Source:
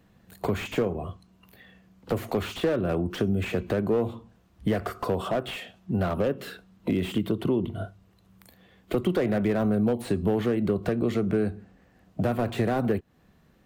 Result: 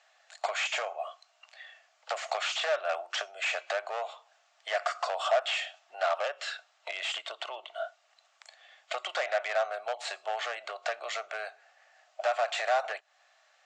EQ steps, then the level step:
Chebyshev band-pass filter 620–7,500 Hz, order 5
high-shelf EQ 4,500 Hz +5.5 dB
notch filter 990 Hz, Q 5.9
+4.5 dB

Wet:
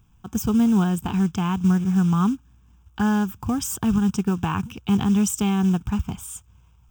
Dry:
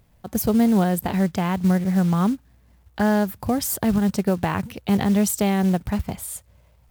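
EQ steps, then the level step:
phaser with its sweep stopped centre 2,900 Hz, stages 8
+1.5 dB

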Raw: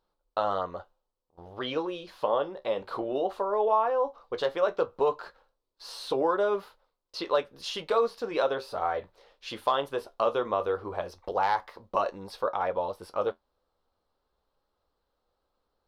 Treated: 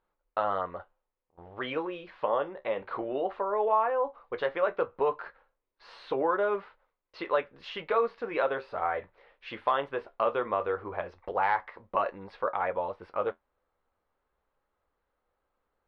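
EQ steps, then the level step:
low-pass with resonance 2,100 Hz, resonance Q 2.4
−2.5 dB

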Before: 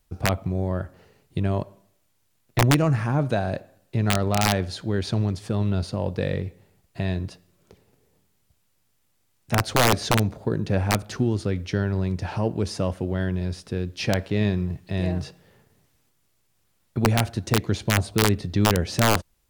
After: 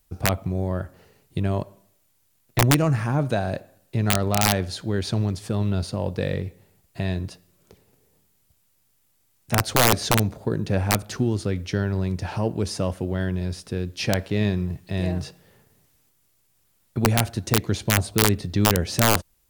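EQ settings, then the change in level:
high-shelf EQ 7,900 Hz +8.5 dB
0.0 dB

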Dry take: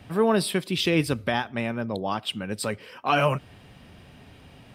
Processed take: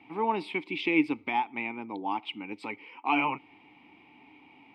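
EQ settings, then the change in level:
formant filter u
parametric band 550 Hz +9 dB 0.82 octaves
parametric band 2,000 Hz +14 dB 2.7 octaves
0.0 dB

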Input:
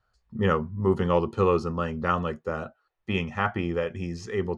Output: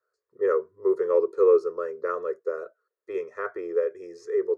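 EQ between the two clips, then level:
high-pass with resonance 430 Hz, resonance Q 5.1
phaser with its sweep stopped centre 800 Hz, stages 6
−6.5 dB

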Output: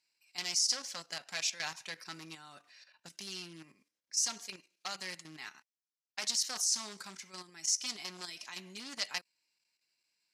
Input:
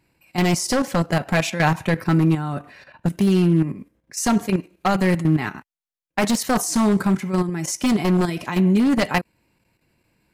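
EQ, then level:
resonant band-pass 5,400 Hz, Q 2.4
0.0 dB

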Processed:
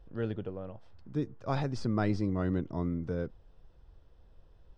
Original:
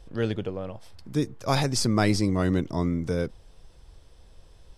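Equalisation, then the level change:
head-to-tape spacing loss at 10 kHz 27 dB
parametric band 1,400 Hz +3 dB 0.22 octaves
notch filter 2,200 Hz, Q 13
−6.0 dB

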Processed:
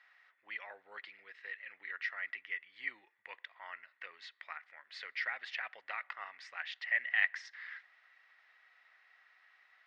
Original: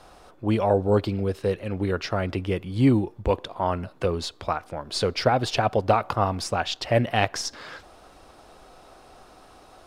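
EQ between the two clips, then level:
four-pole ladder band-pass 2,000 Hz, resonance 85%
high-frequency loss of the air 82 metres
0.0 dB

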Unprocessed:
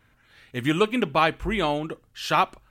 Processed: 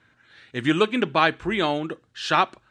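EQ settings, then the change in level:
loudspeaker in its box 100–8,200 Hz, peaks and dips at 340 Hz +4 dB, 1,600 Hz +6 dB, 3,800 Hz +5 dB
0.0 dB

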